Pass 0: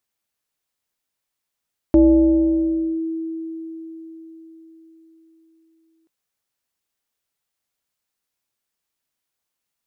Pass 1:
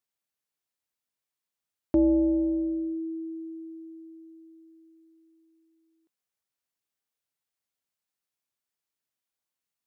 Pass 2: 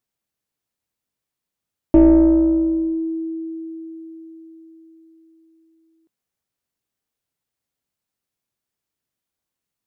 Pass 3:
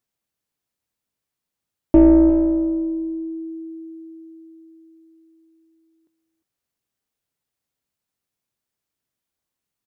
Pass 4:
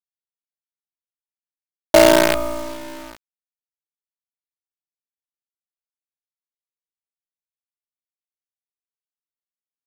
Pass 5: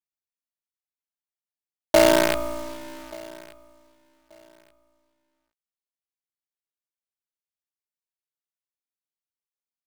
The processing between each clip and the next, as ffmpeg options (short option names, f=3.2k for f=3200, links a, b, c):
-af "highpass=62,volume=-8dB"
-af "lowshelf=f=430:g=10,aeval=exprs='0.447*(cos(1*acos(clip(val(0)/0.447,-1,1)))-cos(1*PI/2))+0.0891*(cos(2*acos(clip(val(0)/0.447,-1,1)))-cos(2*PI/2))+0.00316*(cos(5*acos(clip(val(0)/0.447,-1,1)))-cos(5*PI/2))+0.00631*(cos(7*acos(clip(val(0)/0.447,-1,1)))-cos(7*PI/2))+0.00447*(cos(8*acos(clip(val(0)/0.447,-1,1)))-cos(8*PI/2))':c=same,volume=3.5dB"
-af "aecho=1:1:352:0.168"
-af "highpass=f=670:t=q:w=4.9,acrusher=bits=3:dc=4:mix=0:aa=0.000001,volume=1.5dB"
-af "aecho=1:1:1182|2364:0.0668|0.0154,volume=-5dB"